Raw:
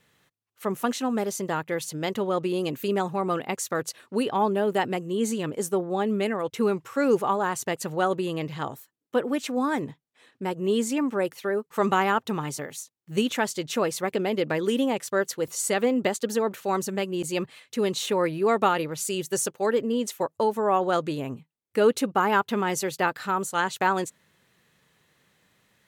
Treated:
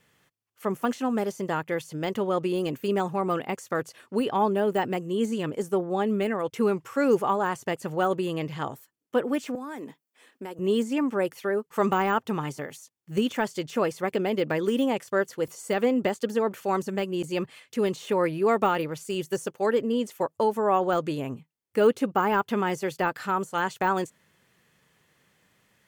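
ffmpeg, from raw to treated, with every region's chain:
ffmpeg -i in.wav -filter_complex "[0:a]asettb=1/sr,asplit=3[link_01][link_02][link_03];[link_01]atrim=end=9.554[link_04];[link_02]atrim=start=9.55:end=10.59,asetpts=PTS-STARTPTS,afade=type=in:duration=0.004:curve=qsin,afade=type=out:start_time=1.036:duration=0.004:curve=qsin,highpass=frequency=210:width=0.5412,highpass=frequency=210:width=1.3066,acompressor=threshold=-32dB:ratio=10:attack=3.2:release=140:knee=1:detection=peak,highshelf=frequency=11000:gain=12[link_05];[link_03]atrim=start=10.586[link_06];[link_04][link_05]acrossfade=duration=0.004:curve1=hsin:curve2=qsin[link_07];[link_07][link_06]acrossfade=duration=0.004:curve1=qsin:curve2=hsin,deesser=0.9,bandreject=frequency=3900:width=10" out.wav

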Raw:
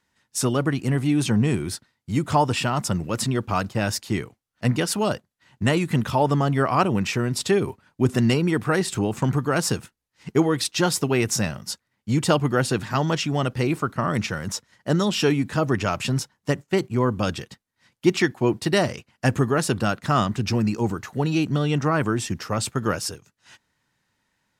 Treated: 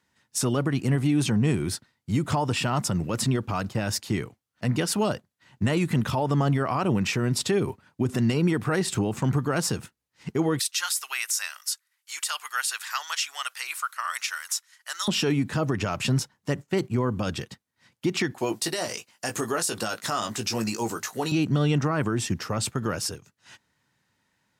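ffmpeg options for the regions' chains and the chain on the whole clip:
ffmpeg -i in.wav -filter_complex "[0:a]asettb=1/sr,asplit=3[link_01][link_02][link_03];[link_01]atrim=end=10.594[link_04];[link_02]atrim=start=10.59:end=15.08,asetpts=PTS-STARTPTS,afade=type=in:duration=0.004:curve=qsin,afade=type=out:start_time=4.486:duration=0.004:curve=qsin,highpass=frequency=1200:width=0.5412,highpass=frequency=1200:width=1.3066,equalizer=frequency=12000:width=0.46:gain=11.5[link_05];[link_03]atrim=start=15.076[link_06];[link_04][link_05]acrossfade=duration=0.004:curve1=hsin:curve2=qsin[link_07];[link_07][link_06]acrossfade=duration=0.004:curve1=qsin:curve2=hsin,asettb=1/sr,asplit=3[link_08][link_09][link_10];[link_08]atrim=end=18.384[link_11];[link_09]atrim=start=18.38:end=21.32,asetpts=PTS-STARTPTS,afade=type=in:duration=0.004:curve=qsin,afade=type=out:start_time=2.936:duration=0.004:curve=qsin,bass=frequency=250:gain=-15,treble=frequency=4000:gain=12,asplit=2[link_12][link_13];[link_13]adelay=18,volume=-7dB[link_14];[link_12][link_14]amix=inputs=2:normalize=0,atrim=end_sample=129654[link_15];[link_10]atrim=start=21.316[link_16];[link_11][link_15]acrossfade=duration=0.004:curve1=hsin:curve2=qsin[link_17];[link_17][link_16]acrossfade=duration=0.004:curve1=qsin:curve2=hsin,alimiter=limit=-16dB:level=0:latency=1:release=83,highpass=75,lowshelf=frequency=170:gain=3" out.wav

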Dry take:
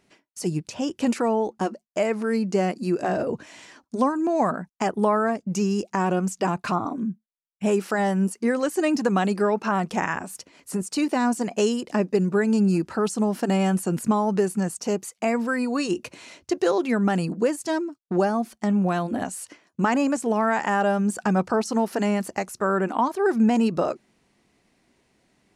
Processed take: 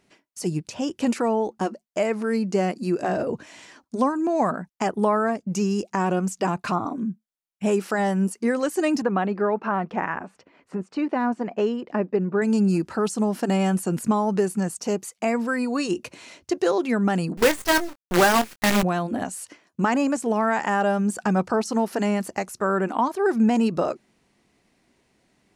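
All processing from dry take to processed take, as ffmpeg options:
ffmpeg -i in.wav -filter_complex "[0:a]asettb=1/sr,asplit=3[link_01][link_02][link_03];[link_01]atrim=end=9.024[link_04];[link_02]atrim=start=9.02:end=12.42,asetpts=PTS-STARTPTS,afade=type=in:duration=0.004:curve=qsin,afade=type=out:start_time=3.396:duration=0.004:curve=qsin,lowpass=2000,lowshelf=frequency=150:gain=-7.5[link_05];[link_03]atrim=start=12.416[link_06];[link_04][link_05]acrossfade=duration=0.004:curve1=hsin:curve2=qsin[link_07];[link_07][link_06]acrossfade=duration=0.004:curve1=qsin:curve2=hsin,asettb=1/sr,asplit=3[link_08][link_09][link_10];[link_08]atrim=end=17.374[link_11];[link_09]atrim=start=17.37:end=18.83,asetpts=PTS-STARTPTS,afade=type=in:duration=0.004:curve=qsin,afade=type=out:start_time=1.456:duration=0.004:curve=qsin,equalizer=frequency=1900:width_type=o:width=2:gain=13.5,acrusher=bits=4:dc=4:mix=0:aa=0.000001,asplit=2[link_12][link_13];[link_13]adelay=23,volume=-12dB[link_14];[link_12][link_14]amix=inputs=2:normalize=0,atrim=end_sample=64386[link_15];[link_10]atrim=start=18.826[link_16];[link_11][link_15]acrossfade=duration=0.004:curve1=hsin:curve2=qsin[link_17];[link_17][link_16]acrossfade=duration=0.004:curve1=qsin:curve2=hsin" out.wav

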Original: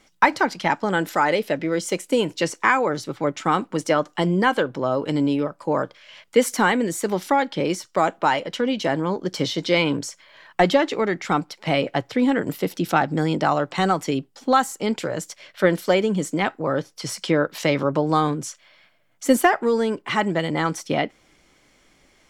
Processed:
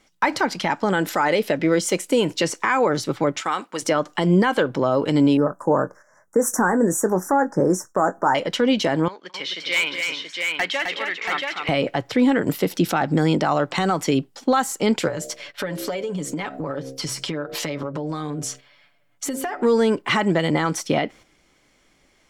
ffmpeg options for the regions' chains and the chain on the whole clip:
ffmpeg -i in.wav -filter_complex "[0:a]asettb=1/sr,asplit=3[link_01][link_02][link_03];[link_01]atrim=end=3.404[link_04];[link_02]atrim=start=3.4:end=3.82,asetpts=PTS-STARTPTS,afade=type=in:duration=0.004:curve=qsin,afade=type=out:start_time=0.416:duration=0.004:curve=qsin,highpass=frequency=1200:poles=1,acompressor=threshold=-25dB:ratio=2.5:attack=3.2:release=140:knee=1:detection=peak[link_05];[link_03]atrim=start=3.816[link_06];[link_04][link_05]acrossfade=duration=0.004:curve1=hsin:curve2=qsin[link_07];[link_07][link_06]acrossfade=duration=0.004:curve1=qsin:curve2=hsin,asettb=1/sr,asplit=3[link_08][link_09][link_10];[link_08]atrim=end=5.374[link_11];[link_09]atrim=start=5.37:end=8.35,asetpts=PTS-STARTPTS,afade=type=in:duration=0.004:curve=qsin,afade=type=out:start_time=2.976:duration=0.004:curve=qsin,asuperstop=centerf=3200:order=12:qfactor=0.78,asplit=2[link_12][link_13];[link_13]adelay=22,volume=-12.5dB[link_14];[link_12][link_14]amix=inputs=2:normalize=0,atrim=end_sample=131418[link_15];[link_10]atrim=start=8.346[link_16];[link_11][link_15]acrossfade=duration=0.004:curve1=hsin:curve2=qsin[link_17];[link_17][link_16]acrossfade=duration=0.004:curve1=qsin:curve2=hsin,asettb=1/sr,asplit=3[link_18][link_19][link_20];[link_18]atrim=end=9.084[link_21];[link_19]atrim=start=9.08:end=11.69,asetpts=PTS-STARTPTS,afade=type=in:duration=0.004:curve=qsin,afade=type=out:start_time=2.606:duration=0.004:curve=qsin,bandpass=frequency=2400:width_type=q:width=1.8,asoftclip=type=hard:threshold=-21dB,aecho=1:1:215|260|680:0.15|0.562|0.668,atrim=end_sample=115101[link_22];[link_20]atrim=start=11.686[link_23];[link_21][link_22]acrossfade=duration=0.004:curve1=hsin:curve2=qsin[link_24];[link_24][link_23]acrossfade=duration=0.004:curve1=qsin:curve2=hsin,asettb=1/sr,asplit=3[link_25][link_26][link_27];[link_25]atrim=end=15.084[link_28];[link_26]atrim=start=15.08:end=19.62,asetpts=PTS-STARTPTS,afade=type=in:duration=0.004:curve=qsin,afade=type=out:start_time=4.536:duration=0.004:curve=qsin,aecho=1:1:7:0.62,atrim=end_sample=200214,bandreject=frequency=66.81:width_type=h:width=4,bandreject=frequency=133.62:width_type=h:width=4,bandreject=frequency=200.43:width_type=h:width=4,bandreject=frequency=267.24:width_type=h:width=4,bandreject=frequency=334.05:width_type=h:width=4,bandreject=frequency=400.86:width_type=h:width=4,bandreject=frequency=467.67:width_type=h:width=4,bandreject=frequency=534.48:width_type=h:width=4,bandreject=frequency=601.29:width_type=h:width=4,bandreject=frequency=668.1:width_type=h:width=4,bandreject=frequency=734.91:width_type=h:width=4,acompressor=threshold=-29dB:ratio=10:attack=3.2:release=140:knee=1:detection=peak[link_29];[link_27]atrim=start=19.616[link_30];[link_28][link_29]acrossfade=duration=0.004:curve1=hsin:curve2=qsin[link_31];[link_31][link_30]acrossfade=duration=0.004:curve1=qsin:curve2=hsin,agate=range=-8dB:threshold=-44dB:ratio=16:detection=peak,alimiter=limit=-14.5dB:level=0:latency=1:release=114,volume=5.5dB" out.wav

